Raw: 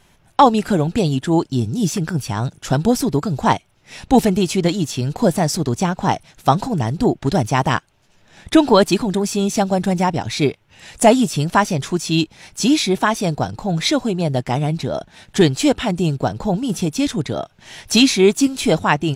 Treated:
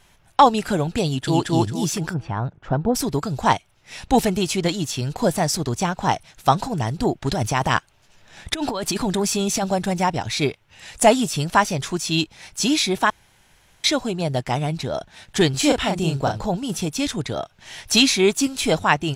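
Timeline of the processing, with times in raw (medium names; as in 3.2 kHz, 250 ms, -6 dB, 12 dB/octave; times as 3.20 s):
1.05–1.48 s: echo throw 220 ms, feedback 30%, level 0 dB
2.13–2.94 s: low-pass 1.9 kHz -> 1 kHz
7.29–9.72 s: compressor with a negative ratio -18 dBFS
13.10–13.84 s: room tone
15.50–16.46 s: doubling 37 ms -3.5 dB
whole clip: peaking EQ 240 Hz -6 dB 2.4 oct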